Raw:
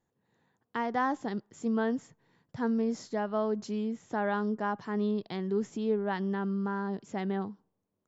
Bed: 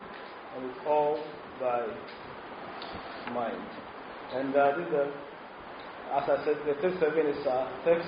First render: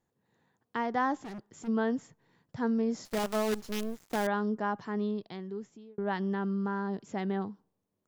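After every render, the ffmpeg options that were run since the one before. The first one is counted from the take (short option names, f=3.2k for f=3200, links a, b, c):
-filter_complex "[0:a]asplit=3[a][b][c];[a]afade=t=out:st=1.22:d=0.02[d];[b]asoftclip=type=hard:threshold=-39.5dB,afade=t=in:st=1.22:d=0.02,afade=t=out:st=1.67:d=0.02[e];[c]afade=t=in:st=1.67:d=0.02[f];[d][e][f]amix=inputs=3:normalize=0,asettb=1/sr,asplit=3[g][h][i];[g]atrim=end=3.054[j];[h]atrim=start=3.05:end=4.27,asetpts=PTS-STARTPTS,afade=t=in:d=0.004:c=qsin,afade=t=out:st=1.216:d=0.004:c=qsin,acrusher=bits=6:dc=4:mix=0:aa=0.000001[k];[i]atrim=start=4.266[l];[j][k]acrossfade=d=0.004:c1=hsin:c2=qsin[m];[m][l]acrossfade=d=0.004:c1=qsin:c2=hsin,asplit=2[n][o];[n]atrim=end=5.98,asetpts=PTS-STARTPTS,afade=t=out:st=4.78:d=1.2[p];[o]atrim=start=5.98,asetpts=PTS-STARTPTS,afade=t=in:d=0.004:c=hsin[q];[p][q]concat=n=2:v=0:a=1"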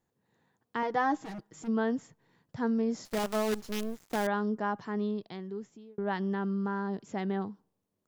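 -filter_complex "[0:a]asettb=1/sr,asplit=3[a][b][c];[a]atrim=end=0.824[d];[b]atrim=start=0.82:end=1.64,asetpts=PTS-STARTPTS,afade=t=in:d=0.004:c=qsin,afade=t=out:st=0.816:d=0.004:c=qsin,aecho=1:1:6.3:0.65,atrim=end_sample=36162[e];[c]atrim=start=1.636[f];[d][e]acrossfade=d=0.004:c1=hsin:c2=qsin[g];[g][f]acrossfade=d=0.004:c1=qsin:c2=hsin"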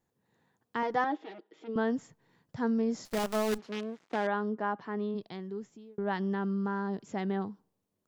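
-filter_complex "[0:a]asettb=1/sr,asplit=3[a][b][c];[a]atrim=end=1.044[d];[b]atrim=start=1.04:end=1.76,asetpts=PTS-STARTPTS,afade=t=in:d=0.004:c=qsin,afade=t=out:st=0.716:d=0.004:c=qsin,highpass=f=310:w=0.5412,highpass=f=310:w=1.3066,equalizer=f=400:t=q:w=4:g=6,equalizer=f=750:t=q:w=4:g=-3,equalizer=f=1.1k:t=q:w=4:g=-8,equalizer=f=1.6k:t=q:w=4:g=-5,equalizer=f=3.4k:t=q:w=4:g=4,lowpass=f=3.7k:w=0.5412,lowpass=f=3.7k:w=1.3066[e];[c]atrim=start=1.756[f];[d][e]acrossfade=d=0.004:c1=hsin:c2=qsin[g];[g][f]acrossfade=d=0.004:c1=qsin:c2=hsin,asplit=3[h][i][j];[h]afade=t=out:st=3.57:d=0.02[k];[i]highpass=210,lowpass=3.4k,afade=t=in:st=3.57:d=0.02,afade=t=out:st=5.14:d=0.02[l];[j]afade=t=in:st=5.14:d=0.02[m];[k][l][m]amix=inputs=3:normalize=0"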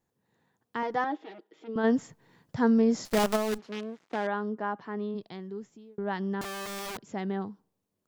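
-filter_complex "[0:a]asplit=3[a][b][c];[a]afade=t=out:st=1.83:d=0.02[d];[b]acontrast=68,afade=t=in:st=1.83:d=0.02,afade=t=out:st=3.35:d=0.02[e];[c]afade=t=in:st=3.35:d=0.02[f];[d][e][f]amix=inputs=3:normalize=0,asettb=1/sr,asplit=3[g][h][i];[g]atrim=end=6.414[j];[h]atrim=start=6.41:end=7.13,asetpts=PTS-STARTPTS,afade=t=in:d=0.004:c=qsin,afade=t=out:st=0.716:d=0.004:c=qsin,aeval=exprs='(mod(42.2*val(0)+1,2)-1)/42.2':c=same[k];[i]atrim=start=7.126[l];[j][k]acrossfade=d=0.004:c1=hsin:c2=qsin[m];[m][l]acrossfade=d=0.004:c1=qsin:c2=hsin"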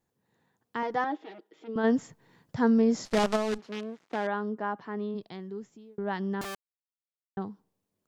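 -filter_complex "[0:a]asettb=1/sr,asplit=3[a][b][c];[a]atrim=end=3.054[d];[b]atrim=start=3.05:end=3.59,asetpts=PTS-STARTPTS,afade=t=in:d=0.004:c=qsin,afade=t=out:st=0.536:d=0.004:c=qsin,lowpass=6.8k[e];[c]atrim=start=3.586[f];[d][e]acrossfade=d=0.004:c1=hsin:c2=qsin[g];[g][f]acrossfade=d=0.004:c1=qsin:c2=hsin,asplit=3[h][i][j];[h]atrim=end=6.55,asetpts=PTS-STARTPTS,afade=t=out:st=6.546:d=0.004:c=hsin[k];[i]atrim=start=6.55:end=7.37,asetpts=PTS-STARTPTS,volume=0[l];[j]atrim=start=7.37,asetpts=PTS-STARTPTS,afade=t=in:d=0.004:c=hsin[m];[k][l][m]concat=n=3:v=0:a=1"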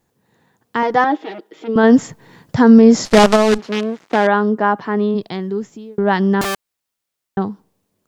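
-af "dynaudnorm=f=430:g=5:m=3.5dB,alimiter=level_in=13dB:limit=-1dB:release=50:level=0:latency=1"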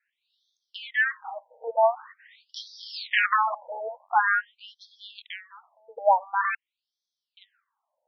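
-af "afftfilt=real='re*between(b*sr/1024,650*pow(4600/650,0.5+0.5*sin(2*PI*0.46*pts/sr))/1.41,650*pow(4600/650,0.5+0.5*sin(2*PI*0.46*pts/sr))*1.41)':imag='im*between(b*sr/1024,650*pow(4600/650,0.5+0.5*sin(2*PI*0.46*pts/sr))/1.41,650*pow(4600/650,0.5+0.5*sin(2*PI*0.46*pts/sr))*1.41)':win_size=1024:overlap=0.75"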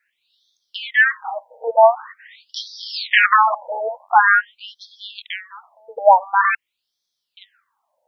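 -af "volume=9.5dB,alimiter=limit=-1dB:level=0:latency=1"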